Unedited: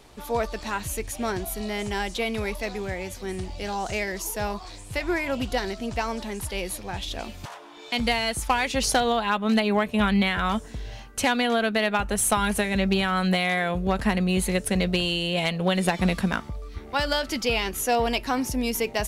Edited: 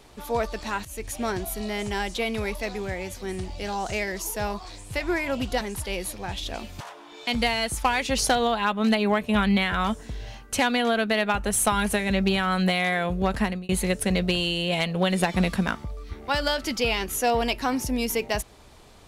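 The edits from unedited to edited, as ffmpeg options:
ffmpeg -i in.wav -filter_complex "[0:a]asplit=4[link_01][link_02][link_03][link_04];[link_01]atrim=end=0.85,asetpts=PTS-STARTPTS,afade=type=out:start_time=0.846:duration=0.004:curve=hsin:silence=0.16788[link_05];[link_02]atrim=start=0.85:end=5.612,asetpts=PTS-STARTPTS,afade=type=in:duration=0.25:silence=0.16788[link_06];[link_03]atrim=start=6.258:end=14.34,asetpts=PTS-STARTPTS,afade=type=out:start_time=7.782:duration=0.3[link_07];[link_04]atrim=start=14.34,asetpts=PTS-STARTPTS,afade=type=in:duration=0.004:curve=hsin[link_08];[link_05][link_06]concat=n=2:v=0:a=1[link_09];[link_07][link_08]concat=n=2:v=0:a=1[link_10];[link_09][link_10]acrossfade=duration=0.004:curve1=hsin:curve2=hsin" out.wav

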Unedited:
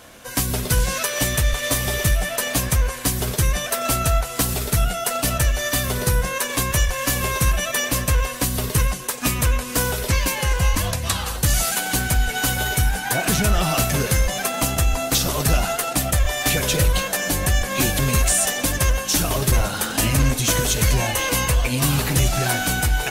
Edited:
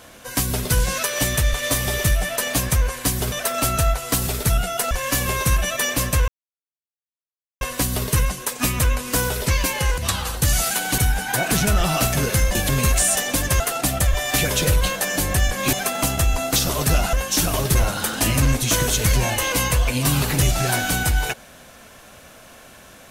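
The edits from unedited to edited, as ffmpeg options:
ffmpeg -i in.wav -filter_complex "[0:a]asplit=10[link_01][link_02][link_03][link_04][link_05][link_06][link_07][link_08][link_09][link_10];[link_01]atrim=end=3.322[link_11];[link_02]atrim=start=3.588:end=5.182[link_12];[link_03]atrim=start=6.858:end=8.23,asetpts=PTS-STARTPTS,afade=type=out:start_time=1.368:duration=0.004:curve=hsin,apad=pad_dur=1.33[link_13];[link_04]atrim=start=8.23:end=10.602,asetpts=PTS-STARTPTS,afade=type=in:duration=0.004:curve=hsin[link_14];[link_05]atrim=start=10.988:end=11.992[link_15];[link_06]atrim=start=12.748:end=14.322[link_16];[link_07]atrim=start=17.848:end=18.902[link_17];[link_08]atrim=start=15.718:end=17.852[link_18];[link_09]atrim=start=14.318:end=15.722[link_19];[link_10]atrim=start=18.898[link_20];[link_11][link_12]acrossfade=duration=0.004:curve1=hsin:curve2=hsin[link_21];[link_13][link_14]concat=n=2:v=0:a=1[link_22];[link_21][link_22]acrossfade=duration=0.004:curve1=hsin:curve2=hsin[link_23];[link_23][link_15]acrossfade=duration=0.004:curve1=hsin:curve2=hsin[link_24];[link_24][link_16]acrossfade=duration=0.004:curve1=hsin:curve2=hsin[link_25];[link_25][link_17]acrossfade=duration=0.004:curve1=hsin:curve2=hsin[link_26];[link_26][link_18]acrossfade=duration=0.004:curve1=hsin:curve2=hsin[link_27];[link_27][link_19]acrossfade=duration=0.004:curve1=hsin:curve2=hsin[link_28];[link_28][link_20]acrossfade=duration=0.004:curve1=hsin:curve2=hsin" out.wav

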